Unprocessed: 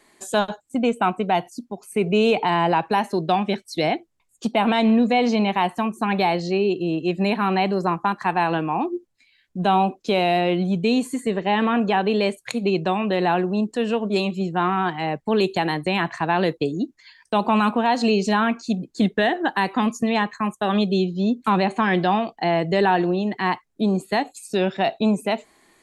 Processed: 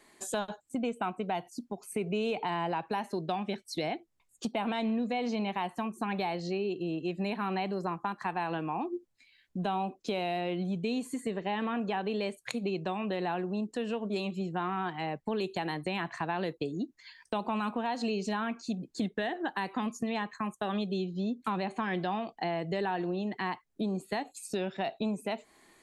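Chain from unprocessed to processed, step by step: compressor 2.5:1, threshold -30 dBFS, peak gain reduction 11 dB; gain -3.5 dB

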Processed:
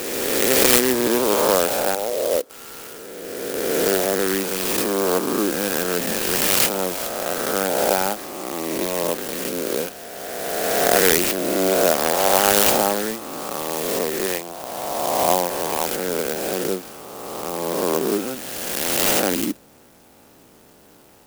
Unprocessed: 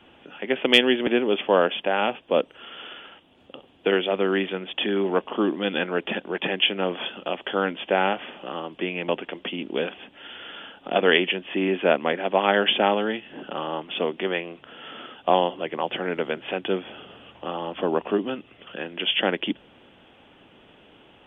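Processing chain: spectral swells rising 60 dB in 2.48 s; 1.95–2.5 band-pass 500 Hz, Q 1.7; clock jitter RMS 0.1 ms; gain -1 dB

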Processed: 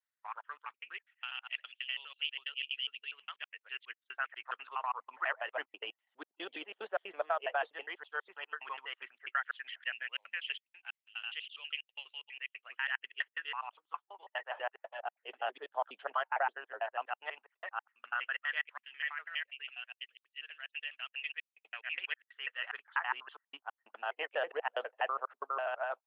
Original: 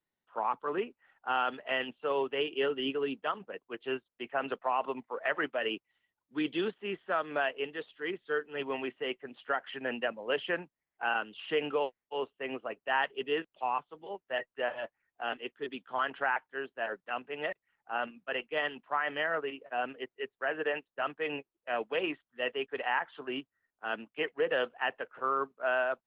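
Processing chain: slices in reverse order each 82 ms, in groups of 3; LFO high-pass sine 0.11 Hz 640–2900 Hz; harmonic-percussive split harmonic -9 dB; gain -4.5 dB

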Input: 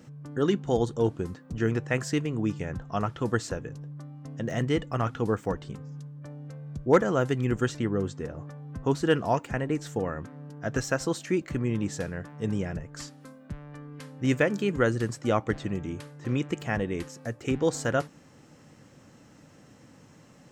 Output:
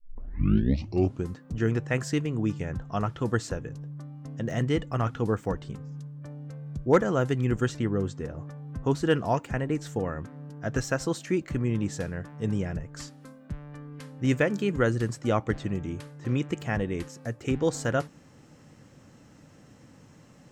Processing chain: tape start at the beginning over 1.25 s; low shelf 130 Hz +5.5 dB; gain -1 dB

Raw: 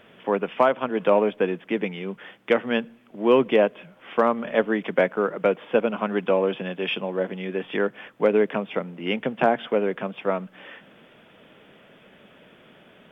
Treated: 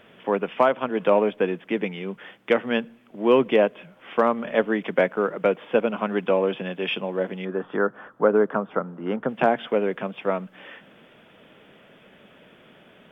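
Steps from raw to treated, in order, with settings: 7.45–9.29 resonant high shelf 1800 Hz -9.5 dB, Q 3

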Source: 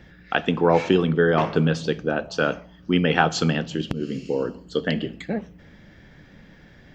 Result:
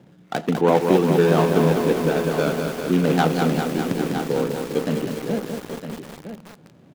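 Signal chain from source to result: median filter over 25 samples; HPF 120 Hz 24 dB/oct; echo 0.958 s -10 dB; lo-fi delay 0.201 s, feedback 80%, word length 6-bit, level -5 dB; gain +1.5 dB

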